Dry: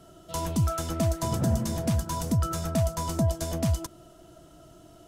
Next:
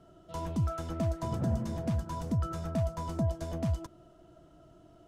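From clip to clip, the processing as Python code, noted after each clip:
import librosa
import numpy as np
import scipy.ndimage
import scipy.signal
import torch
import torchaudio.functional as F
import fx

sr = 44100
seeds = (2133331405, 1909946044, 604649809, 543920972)

y = fx.lowpass(x, sr, hz=1900.0, slope=6)
y = F.gain(torch.from_numpy(y), -5.0).numpy()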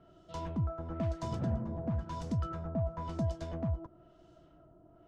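y = fx.filter_lfo_lowpass(x, sr, shape='sine', hz=0.99, low_hz=900.0, high_hz=5500.0, q=0.9)
y = fx.high_shelf(y, sr, hz=4300.0, db=7.5)
y = F.gain(torch.from_numpy(y), -3.0).numpy()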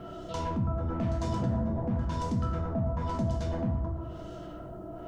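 y = fx.rev_plate(x, sr, seeds[0], rt60_s=0.86, hf_ratio=0.55, predelay_ms=0, drr_db=-0.5)
y = fx.env_flatten(y, sr, amount_pct=50)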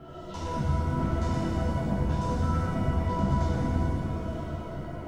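y = fx.chorus_voices(x, sr, voices=2, hz=0.76, base_ms=13, depth_ms=1.8, mix_pct=45)
y = fx.rev_shimmer(y, sr, seeds[1], rt60_s=3.2, semitones=7, shimmer_db=-8, drr_db=-3.5)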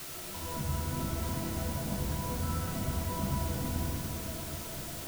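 y = fx.quant_dither(x, sr, seeds[2], bits=6, dither='triangular')
y = F.gain(torch.from_numpy(y), -7.0).numpy()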